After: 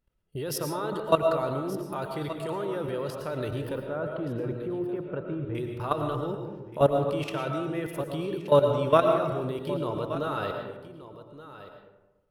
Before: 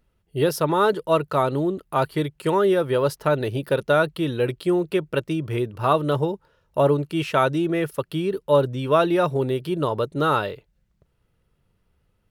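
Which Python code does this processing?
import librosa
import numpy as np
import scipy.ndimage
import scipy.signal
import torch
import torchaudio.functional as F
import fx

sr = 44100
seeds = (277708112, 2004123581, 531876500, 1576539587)

y = fx.lowpass(x, sr, hz=1300.0, slope=12, at=(3.75, 5.55))
y = fx.level_steps(y, sr, step_db=16)
y = y + 10.0 ** (-14.5 / 20.0) * np.pad(y, (int(1175 * sr / 1000.0), 0))[:len(y)]
y = fx.rev_freeverb(y, sr, rt60_s=1.1, hf_ratio=0.45, predelay_ms=70, drr_db=4.0)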